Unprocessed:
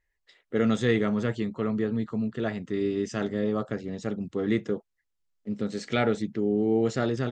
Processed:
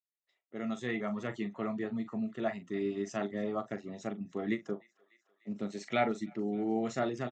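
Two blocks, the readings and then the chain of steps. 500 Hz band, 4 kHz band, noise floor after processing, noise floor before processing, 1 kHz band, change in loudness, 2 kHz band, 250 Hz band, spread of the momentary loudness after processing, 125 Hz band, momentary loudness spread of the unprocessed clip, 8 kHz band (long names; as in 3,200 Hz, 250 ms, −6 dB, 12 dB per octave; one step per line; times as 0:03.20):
−8.0 dB, −8.5 dB, below −85 dBFS, −79 dBFS, −1.5 dB, −7.5 dB, −5.5 dB, −8.0 dB, 8 LU, −12.0 dB, 9 LU, −6.0 dB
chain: fade in at the beginning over 1.43 s
dynamic equaliser 1,800 Hz, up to +4 dB, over −47 dBFS, Q 2.4
on a send: feedback echo with a high-pass in the loop 299 ms, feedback 73%, high-pass 730 Hz, level −23 dB
on the sum: reverb reduction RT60 0.51 s
loudspeaker in its box 200–7,300 Hz, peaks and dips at 280 Hz −4 dB, 470 Hz −10 dB, 670 Hz +6 dB, 1,600 Hz −9 dB, 3,200 Hz −5 dB, 4,700 Hz −9 dB
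double-tracking delay 40 ms −11 dB
every ending faded ahead of time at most 320 dB per second
level −2.5 dB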